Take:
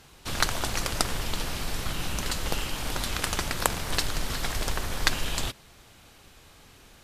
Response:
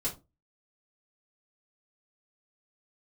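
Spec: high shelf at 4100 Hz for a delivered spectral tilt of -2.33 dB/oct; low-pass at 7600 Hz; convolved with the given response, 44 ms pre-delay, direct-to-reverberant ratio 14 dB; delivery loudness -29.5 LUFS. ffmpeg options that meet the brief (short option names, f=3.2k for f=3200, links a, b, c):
-filter_complex "[0:a]lowpass=7.6k,highshelf=f=4.1k:g=4.5,asplit=2[a][b];[1:a]atrim=start_sample=2205,adelay=44[c];[b][c]afir=irnorm=-1:irlink=0,volume=-17.5dB[d];[a][d]amix=inputs=2:normalize=0,volume=-1dB"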